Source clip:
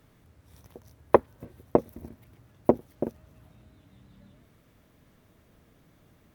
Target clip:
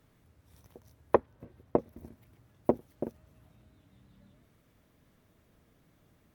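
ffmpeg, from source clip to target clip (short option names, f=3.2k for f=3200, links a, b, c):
-filter_complex "[0:a]asettb=1/sr,asplit=3[a][b][c];[a]atrim=end=1.154[d];[b]atrim=start=1.15:end=1.97,asetpts=PTS-STARTPTS,afade=t=in:d=0.004:c=qsin,afade=t=out:st=0.816:d=0.004:c=qsin,highshelf=f=5.6k:g=-10.5[e];[c]atrim=start=1.966[f];[d][e]acrossfade=d=0.004:c1=hsin:c2=qsin[g];[g][f]acrossfade=d=0.004:c1=qsin:c2=hsin,volume=-5dB" -ar 48000 -c:a libmp3lame -b:a 80k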